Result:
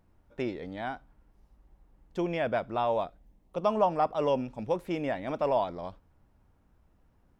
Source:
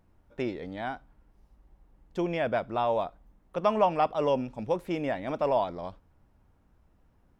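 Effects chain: 3.04–4.13 s: peaking EQ 900 Hz -> 3.2 kHz -10.5 dB 0.7 oct; trim -1 dB

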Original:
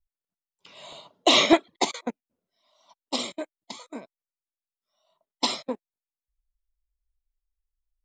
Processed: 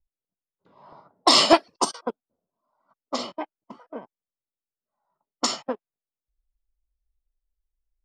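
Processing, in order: formant shift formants +5 st; time-frequency box 1.74–2.78 s, 1.6–3.3 kHz -11 dB; level-controlled noise filter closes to 660 Hz, open at -20 dBFS; trim +2 dB

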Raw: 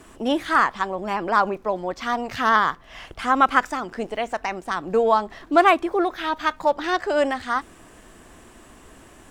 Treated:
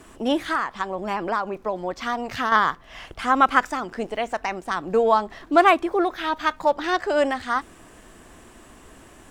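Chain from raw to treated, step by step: 0.48–2.52 s: compression 5:1, threshold -21 dBFS, peak gain reduction 8 dB

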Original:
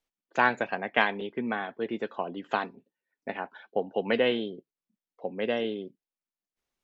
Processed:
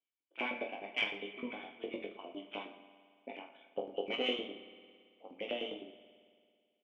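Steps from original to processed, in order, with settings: cascade formant filter i; peaking EQ 1.7 kHz -8.5 dB 0.46 oct; Chebyshev shaper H 6 -29 dB, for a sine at -23 dBFS; LFO high-pass saw up 9.8 Hz 510–1900 Hz; reverse bouncing-ball echo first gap 20 ms, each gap 1.25×, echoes 5; on a send at -12 dB: reverberation RT60 2.1 s, pre-delay 55 ms; on the sum: trim +7.5 dB

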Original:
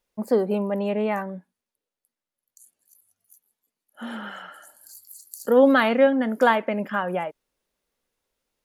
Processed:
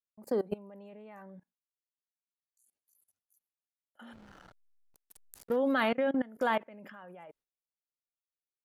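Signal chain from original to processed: level held to a coarse grid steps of 22 dB; gate with hold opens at -56 dBFS; 4.13–5.56 s: hysteresis with a dead band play -35.5 dBFS; trim -5.5 dB

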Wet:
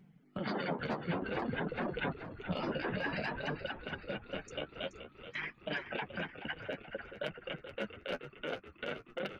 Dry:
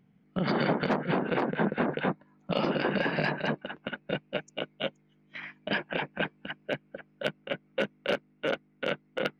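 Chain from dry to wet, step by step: reverb removal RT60 1.5 s; compression, threshold -31 dBFS, peak gain reduction 8 dB; peak limiter -29 dBFS, peak gain reduction 10.5 dB; flange 0.54 Hz, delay 5.1 ms, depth 8.3 ms, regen +21%; on a send: frequency-shifting echo 428 ms, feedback 58%, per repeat -66 Hz, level -10.5 dB; on the sum: trim +6 dB

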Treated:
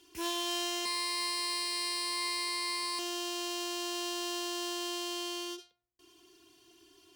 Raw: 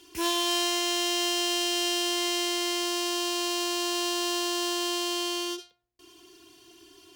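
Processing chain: 0.85–2.99 s: rippled EQ curve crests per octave 0.93, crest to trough 18 dB; trim -7.5 dB

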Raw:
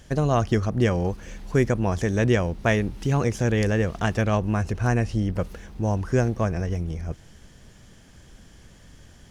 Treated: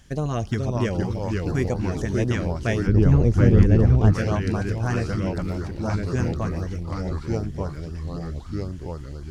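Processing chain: ever faster or slower copies 401 ms, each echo -2 st, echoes 3; 2.87–4.14 s: tilt EQ -3 dB/octave; LFO notch saw up 3.9 Hz 380–2900 Hz; trim -3 dB

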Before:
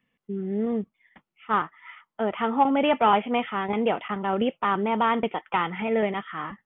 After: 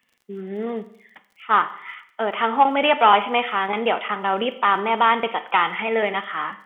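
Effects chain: high-pass 1 kHz 6 dB/octave; crackle 38 per s -55 dBFS; reverberation RT60 0.65 s, pre-delay 31 ms, DRR 12.5 dB; trim +9 dB

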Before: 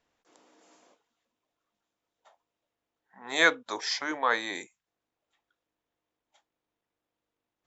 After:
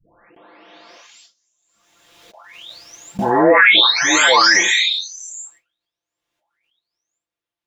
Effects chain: delay that grows with frequency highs late, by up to 897 ms; gate with hold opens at -60 dBFS; peaking EQ 3.7 kHz +9.5 dB 3 oct; loudness maximiser +18 dB; swell ahead of each attack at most 33 dB/s; trim -2 dB

